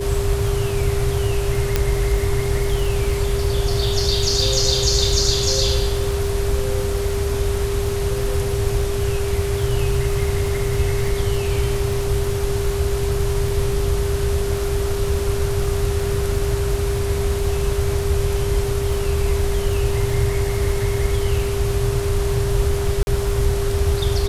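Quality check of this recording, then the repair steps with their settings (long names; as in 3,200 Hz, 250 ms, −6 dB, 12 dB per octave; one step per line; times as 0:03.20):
surface crackle 38 per second −27 dBFS
whistle 400 Hz −23 dBFS
0:01.76: click −3 dBFS
0:23.03–0:23.07: drop-out 41 ms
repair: click removal
notch filter 400 Hz, Q 30
repair the gap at 0:23.03, 41 ms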